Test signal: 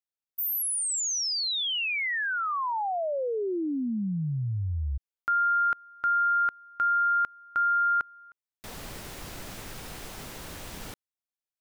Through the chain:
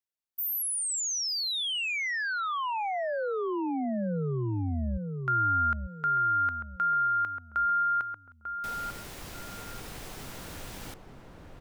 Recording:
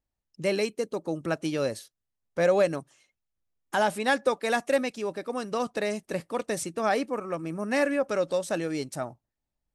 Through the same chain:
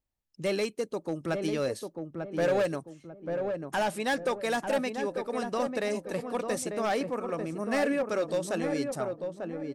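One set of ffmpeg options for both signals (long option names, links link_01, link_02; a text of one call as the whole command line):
ffmpeg -i in.wav -filter_complex "[0:a]volume=21dB,asoftclip=hard,volume=-21dB,asplit=2[link_01][link_02];[link_02]adelay=894,lowpass=frequency=920:poles=1,volume=-4dB,asplit=2[link_03][link_04];[link_04]adelay=894,lowpass=frequency=920:poles=1,volume=0.39,asplit=2[link_05][link_06];[link_06]adelay=894,lowpass=frequency=920:poles=1,volume=0.39,asplit=2[link_07][link_08];[link_08]adelay=894,lowpass=frequency=920:poles=1,volume=0.39,asplit=2[link_09][link_10];[link_10]adelay=894,lowpass=frequency=920:poles=1,volume=0.39[link_11];[link_03][link_05][link_07][link_09][link_11]amix=inputs=5:normalize=0[link_12];[link_01][link_12]amix=inputs=2:normalize=0,volume=-2dB" out.wav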